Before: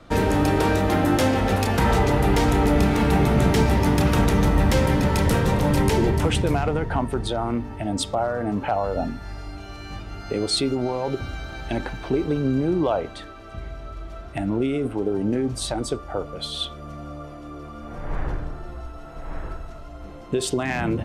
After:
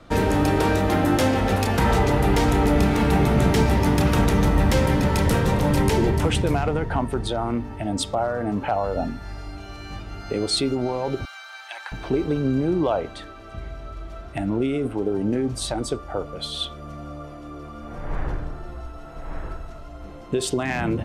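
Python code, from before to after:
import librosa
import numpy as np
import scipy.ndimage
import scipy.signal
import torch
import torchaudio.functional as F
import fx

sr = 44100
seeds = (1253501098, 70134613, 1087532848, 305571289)

y = fx.highpass(x, sr, hz=920.0, slope=24, at=(11.25, 11.92))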